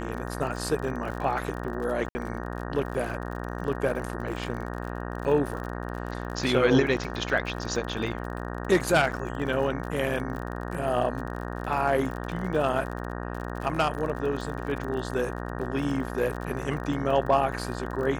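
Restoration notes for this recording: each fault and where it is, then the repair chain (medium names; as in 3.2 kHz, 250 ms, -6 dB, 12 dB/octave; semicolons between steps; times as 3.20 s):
buzz 60 Hz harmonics 31 -34 dBFS
crackle 51 per s -34 dBFS
2.09–2.15 s: dropout 60 ms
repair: de-click; de-hum 60 Hz, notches 31; interpolate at 2.09 s, 60 ms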